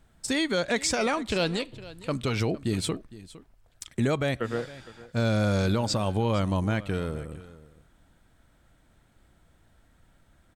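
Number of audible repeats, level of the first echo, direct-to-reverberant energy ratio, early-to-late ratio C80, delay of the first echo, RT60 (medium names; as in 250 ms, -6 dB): 1, -18.0 dB, no reverb, no reverb, 460 ms, no reverb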